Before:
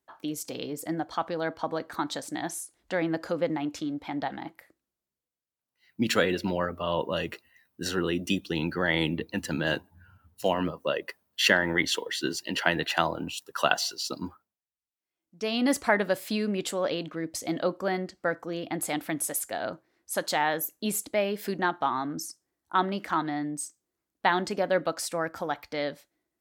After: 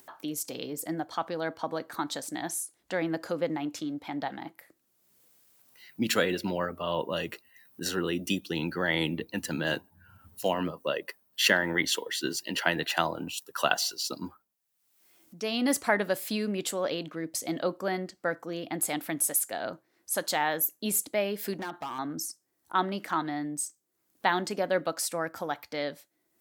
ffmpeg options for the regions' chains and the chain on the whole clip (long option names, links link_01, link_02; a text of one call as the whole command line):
ffmpeg -i in.wav -filter_complex "[0:a]asettb=1/sr,asplit=3[link_01][link_02][link_03];[link_01]atrim=end=21.534[link_04];[link_02]atrim=start=21.53:end=21.99,asetpts=PTS-STARTPTS,afade=type=in:duration=0.004:curve=qsin,afade=type=out:start_time=0.456:duration=0.004:curve=qsin,acompressor=threshold=-28dB:ratio=3:attack=3.2:release=140:knee=1:detection=peak,asoftclip=type=hard:threshold=-29.5dB[link_05];[link_03]atrim=start=21.986[link_06];[link_04][link_05]acrossfade=duration=0.004:curve1=hsin:curve2=qsin[link_07];[link_07][link_06]acrossfade=duration=0.004:curve1=qsin:curve2=hsin,highpass=100,highshelf=frequency=8400:gain=9.5,acompressor=mode=upward:threshold=-39dB:ratio=2.5,volume=-2dB" out.wav